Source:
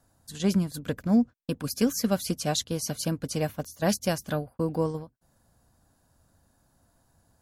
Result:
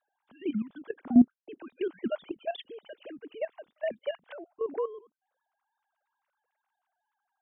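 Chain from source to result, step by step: sine-wave speech; level quantiser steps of 14 dB

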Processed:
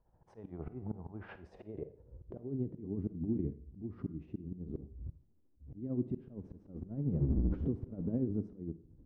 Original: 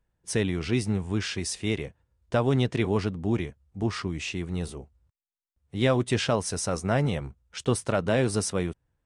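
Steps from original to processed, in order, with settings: 6.18–8.06 zero-crossing step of -25.5 dBFS; recorder AGC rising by 49 dB/s; 0.57–1.34 LPF 1100 Hz -> 2400 Hz 12 dB/oct; compressor 16:1, threshold -27 dBFS, peak gain reduction 12 dB; low-pass sweep 820 Hz -> 280 Hz, 1.18–2.82; limiter -23.5 dBFS, peak gain reduction 9 dB; tremolo 13 Hz, depth 51%; auto swell 0.299 s; Schroeder reverb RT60 0.51 s, DRR 13 dB; gain +1 dB

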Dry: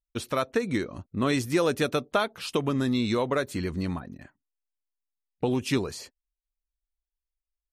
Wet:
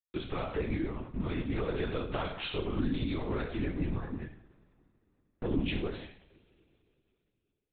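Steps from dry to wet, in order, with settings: sample leveller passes 2; HPF 180 Hz 24 dB/oct; bell 230 Hz +7 dB 0.76 oct; limiter -13.5 dBFS, peak gain reduction 7.5 dB; notches 50/100/150/200/250 Hz; compressor, threshold -25 dBFS, peak gain reduction 9 dB; two-slope reverb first 0.58 s, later 3.3 s, from -26 dB, DRR -1.5 dB; LPC vocoder at 8 kHz whisper; 1.74–2.24 three-band squash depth 100%; gain -8 dB

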